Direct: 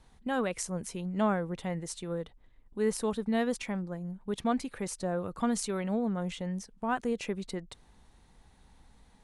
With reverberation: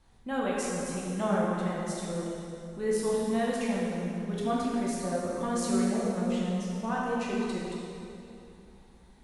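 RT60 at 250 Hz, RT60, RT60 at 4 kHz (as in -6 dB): 3.2 s, 2.8 s, 2.3 s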